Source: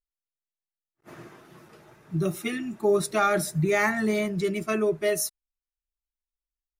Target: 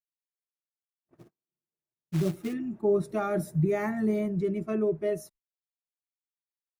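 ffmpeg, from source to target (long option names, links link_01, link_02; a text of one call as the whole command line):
ffmpeg -i in.wav -filter_complex "[0:a]agate=range=-47dB:threshold=-42dB:ratio=16:detection=peak,firequalizer=gain_entry='entry(190,0);entry(1300,-12);entry(2400,-15);entry(4000,-20)':delay=0.05:min_phase=1,asplit=3[link_01][link_02][link_03];[link_01]afade=type=out:start_time=1.15:duration=0.02[link_04];[link_02]acrusher=bits=4:mode=log:mix=0:aa=0.000001,afade=type=in:start_time=1.15:duration=0.02,afade=type=out:start_time=2.52:duration=0.02[link_05];[link_03]afade=type=in:start_time=2.52:duration=0.02[link_06];[link_04][link_05][link_06]amix=inputs=3:normalize=0,asettb=1/sr,asplit=3[link_07][link_08][link_09];[link_07]atrim=end=3.094[link_10];[link_08]atrim=start=3.09:end=4.38,asetpts=PTS-STARTPTS,afade=type=in:duration=0.004:curve=qsin,afade=type=out:start_time=1.286:duration=0.004:curve=qsin,highshelf=frequency=9400:gain=12[link_11];[link_09]atrim=start=4.376[link_12];[link_10][link_11]acrossfade=duration=0.004:curve1=hsin:curve2=qsin[link_13];[link_13][link_12]acrossfade=duration=0.004:curve1=qsin:curve2=hsin" out.wav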